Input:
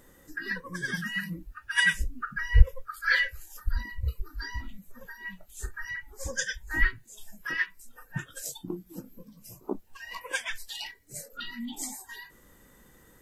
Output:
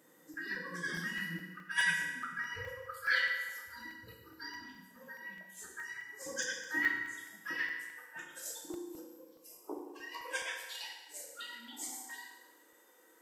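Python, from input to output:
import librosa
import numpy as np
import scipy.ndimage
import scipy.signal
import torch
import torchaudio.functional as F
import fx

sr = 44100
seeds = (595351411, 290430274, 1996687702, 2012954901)

y = fx.highpass(x, sr, hz=fx.steps((0.0, 170.0), (7.55, 350.0)), slope=24)
y = fx.rev_fdn(y, sr, rt60_s=1.4, lf_ratio=0.9, hf_ratio=0.75, size_ms=19.0, drr_db=-1.5)
y = fx.buffer_crackle(y, sr, first_s=0.34, period_s=0.21, block=64, kind='zero')
y = F.gain(torch.from_numpy(y), -8.0).numpy()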